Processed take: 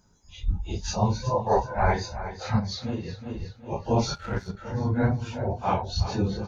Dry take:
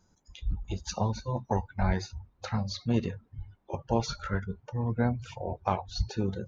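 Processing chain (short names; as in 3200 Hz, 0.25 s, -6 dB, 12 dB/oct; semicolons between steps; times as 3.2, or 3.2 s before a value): phase scrambler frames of 0.1 s; 1.29–1.94 graphic EQ 125/250/500/1000/2000/4000 Hz -7/-8/+9/+5/+4/-10 dB; feedback echo 0.369 s, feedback 35%, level -12 dB; 2.59–3.38 compressor 6:1, threshold -32 dBFS, peak gain reduction 11.5 dB; 4.15–4.57 power-law curve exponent 1.4; gain +4.5 dB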